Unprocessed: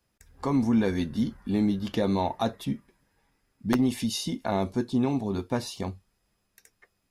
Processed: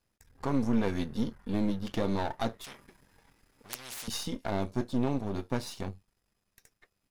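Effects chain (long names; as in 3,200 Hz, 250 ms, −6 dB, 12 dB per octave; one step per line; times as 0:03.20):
gain on one half-wave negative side −12 dB
0:02.64–0:04.08: every bin compressed towards the loudest bin 10 to 1
level −1 dB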